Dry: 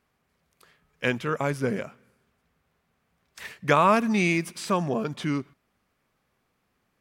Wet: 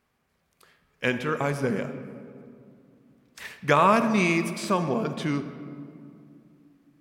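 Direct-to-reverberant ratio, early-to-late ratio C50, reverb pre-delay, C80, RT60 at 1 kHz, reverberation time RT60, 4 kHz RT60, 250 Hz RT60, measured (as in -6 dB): 9.0 dB, 10.0 dB, 3 ms, 11.0 dB, 2.2 s, 2.5 s, 1.3 s, 3.6 s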